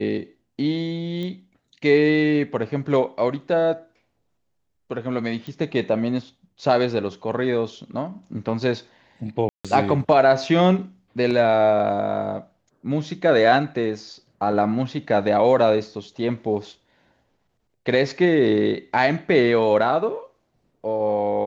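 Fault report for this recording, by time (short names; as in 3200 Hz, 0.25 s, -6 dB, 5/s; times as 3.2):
1.23 pop -21 dBFS
5.47 pop -24 dBFS
9.49–9.65 gap 0.156 s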